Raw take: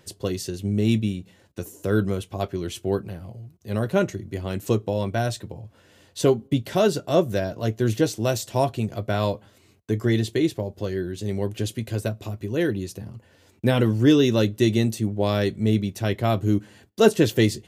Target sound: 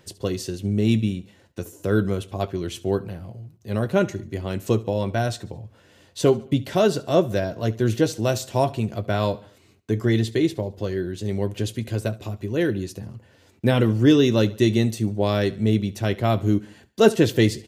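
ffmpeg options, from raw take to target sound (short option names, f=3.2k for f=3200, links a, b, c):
-af "equalizer=f=13k:w=0.5:g=-3.5,aecho=1:1:71|142|213:0.1|0.045|0.0202,volume=1dB"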